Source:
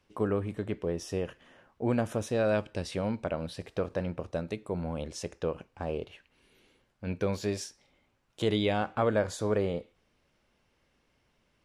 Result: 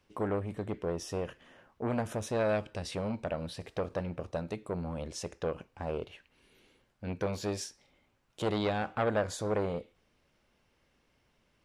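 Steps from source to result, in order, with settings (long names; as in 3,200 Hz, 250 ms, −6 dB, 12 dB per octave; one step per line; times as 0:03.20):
saturating transformer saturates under 1,000 Hz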